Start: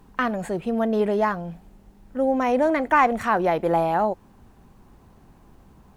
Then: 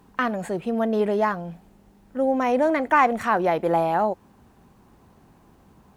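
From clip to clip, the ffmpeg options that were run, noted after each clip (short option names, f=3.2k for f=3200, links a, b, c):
-af "highpass=f=99:p=1"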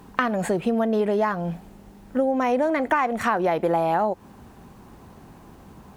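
-af "acompressor=threshold=-27dB:ratio=6,volume=8dB"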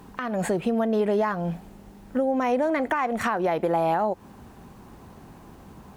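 -af "alimiter=limit=-14.5dB:level=0:latency=1:release=230"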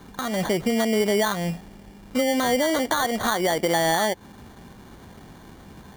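-af "acrusher=samples=17:mix=1:aa=0.000001,volume=1.5dB"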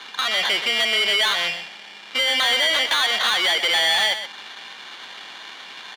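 -filter_complex "[0:a]bandpass=f=3.3k:t=q:w=1.8:csg=0,asplit=2[a][b];[b]highpass=f=720:p=1,volume=23dB,asoftclip=type=tanh:threshold=-16.5dB[c];[a][c]amix=inputs=2:normalize=0,lowpass=f=3.2k:p=1,volume=-6dB,aecho=1:1:124:0.316,volume=7.5dB"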